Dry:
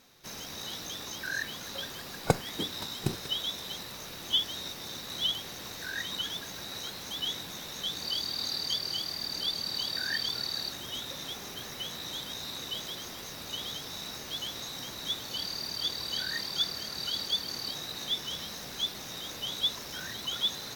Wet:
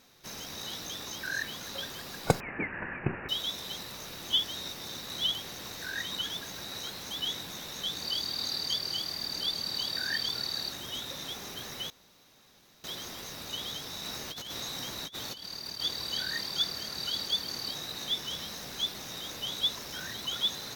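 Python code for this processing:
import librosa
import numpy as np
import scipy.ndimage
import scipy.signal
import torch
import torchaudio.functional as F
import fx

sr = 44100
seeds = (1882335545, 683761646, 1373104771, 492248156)

y = fx.resample_bad(x, sr, factor=8, down='none', up='filtered', at=(2.4, 3.29))
y = fx.over_compress(y, sr, threshold_db=-39.0, ratio=-0.5, at=(14.04, 15.8))
y = fx.edit(y, sr, fx.room_tone_fill(start_s=11.9, length_s=0.94), tone=tone)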